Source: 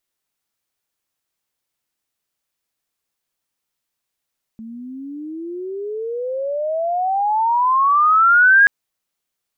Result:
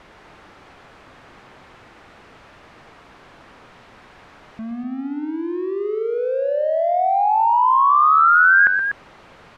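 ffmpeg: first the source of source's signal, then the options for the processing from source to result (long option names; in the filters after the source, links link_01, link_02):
-f lavfi -i "aevalsrc='pow(10,(-7+24*(t/4.08-1))/20)*sin(2*PI*220*4.08/(35*log(2)/12)*(exp(35*log(2)/12*t/4.08)-1))':duration=4.08:sample_rate=44100"
-filter_complex "[0:a]aeval=exprs='val(0)+0.5*0.0299*sgn(val(0))':channel_layout=same,lowpass=1600,asplit=2[link_01][link_02];[link_02]aecho=0:1:122.4|244.9:0.355|0.398[link_03];[link_01][link_03]amix=inputs=2:normalize=0"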